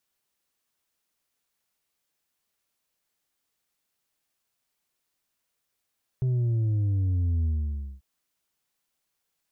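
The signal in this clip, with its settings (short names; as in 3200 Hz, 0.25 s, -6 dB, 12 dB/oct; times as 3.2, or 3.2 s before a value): sub drop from 130 Hz, over 1.79 s, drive 4 dB, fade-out 0.56 s, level -22.5 dB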